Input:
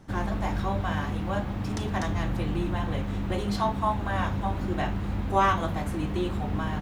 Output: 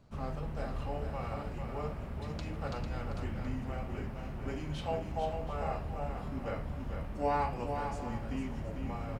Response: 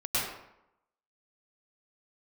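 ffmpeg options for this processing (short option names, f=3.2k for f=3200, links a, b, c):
-af "aecho=1:1:332|537:0.473|0.188,asetrate=32667,aresample=44100,volume=-9dB"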